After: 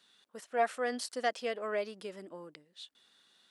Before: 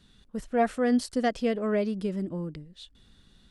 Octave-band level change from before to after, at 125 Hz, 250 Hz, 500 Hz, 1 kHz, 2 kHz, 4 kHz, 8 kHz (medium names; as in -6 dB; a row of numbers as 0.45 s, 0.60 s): under -20 dB, -18.5 dB, -6.5 dB, -3.5 dB, -1.5 dB, -1.5 dB, -1.5 dB